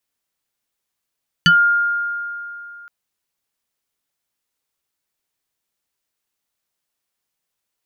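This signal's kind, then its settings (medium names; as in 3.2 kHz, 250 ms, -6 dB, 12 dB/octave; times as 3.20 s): FM tone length 1.42 s, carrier 1.41 kHz, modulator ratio 1.12, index 2.2, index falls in 0.15 s exponential, decay 2.84 s, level -7.5 dB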